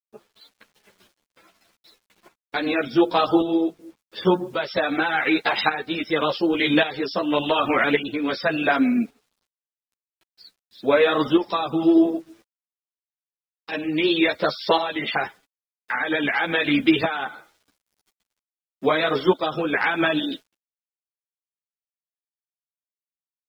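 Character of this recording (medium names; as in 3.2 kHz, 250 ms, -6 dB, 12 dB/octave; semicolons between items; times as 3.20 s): a quantiser's noise floor 10-bit, dither none; tremolo saw up 0.88 Hz, depth 60%; a shimmering, thickened sound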